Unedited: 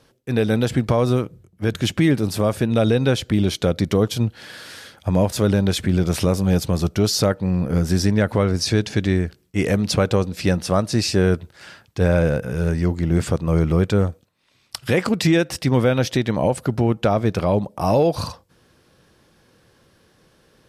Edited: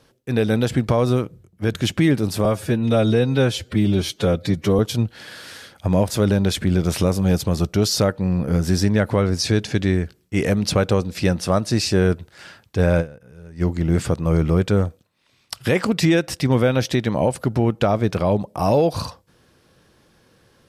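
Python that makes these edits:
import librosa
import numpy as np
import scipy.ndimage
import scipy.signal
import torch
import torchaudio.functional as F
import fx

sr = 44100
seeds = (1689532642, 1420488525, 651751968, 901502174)

y = fx.edit(x, sr, fx.stretch_span(start_s=2.45, length_s=1.56, factor=1.5),
    fx.fade_down_up(start_s=12.22, length_s=0.62, db=-20.5, fade_s=0.25, curve='exp'), tone=tone)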